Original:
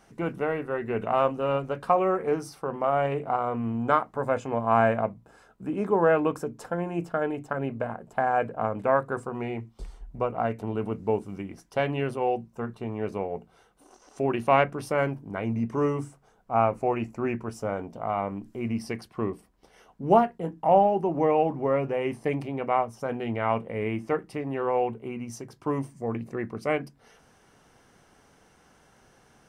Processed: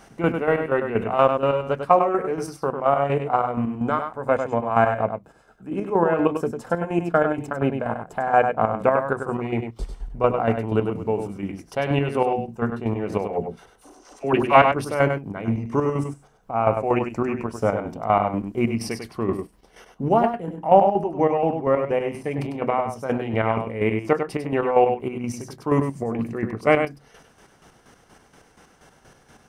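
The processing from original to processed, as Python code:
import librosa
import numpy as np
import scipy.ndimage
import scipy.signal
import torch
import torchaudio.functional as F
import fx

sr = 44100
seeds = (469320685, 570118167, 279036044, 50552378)

p1 = fx.rider(x, sr, range_db=4, speed_s=2.0)
p2 = fx.chopper(p1, sr, hz=4.2, depth_pct=60, duty_pct=35)
p3 = fx.dispersion(p2, sr, late='lows', ms=49.0, hz=790.0, at=(13.26, 14.62))
p4 = p3 + fx.echo_single(p3, sr, ms=99, db=-7.0, dry=0)
y = p4 * librosa.db_to_amplitude(7.0)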